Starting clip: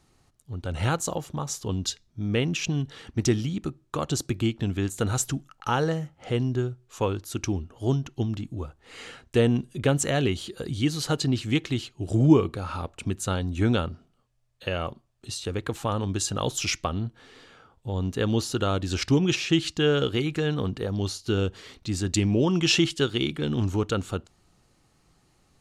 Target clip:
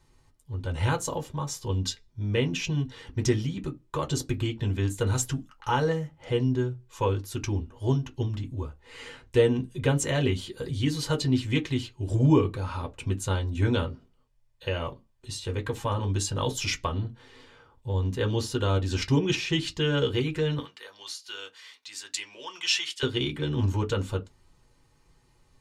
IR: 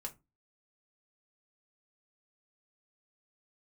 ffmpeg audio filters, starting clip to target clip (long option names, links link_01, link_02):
-filter_complex "[0:a]asettb=1/sr,asplit=3[link_01][link_02][link_03];[link_01]atrim=end=20.594[link_04];[link_02]atrim=start=20.59:end=23.03,asetpts=PTS-STARTPTS,afade=type=in:duration=0.004:curve=qsin,afade=type=out:start_time=2.436:duration=0.004:curve=qsin,highpass=1400[link_05];[link_03]atrim=start=23.026[link_06];[link_04][link_05]acrossfade=duration=0.004:curve1=hsin:curve2=qsin[link_07];[link_07][link_06]acrossfade=duration=0.004:curve1=qsin:curve2=hsin[link_08];[1:a]atrim=start_sample=2205,asetrate=83790,aresample=44100[link_09];[link_08][link_09]afir=irnorm=-1:irlink=0,volume=6.5dB"